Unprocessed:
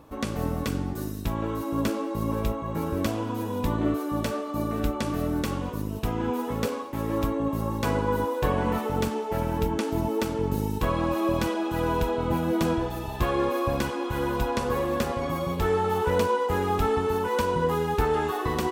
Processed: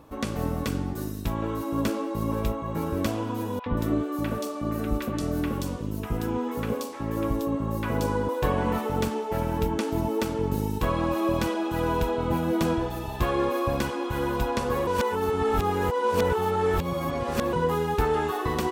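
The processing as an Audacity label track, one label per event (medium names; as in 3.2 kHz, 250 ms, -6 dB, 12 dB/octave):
3.590000	8.290000	three bands offset in time mids, lows, highs 70/180 ms, splits 860/3300 Hz
14.870000	17.530000	reverse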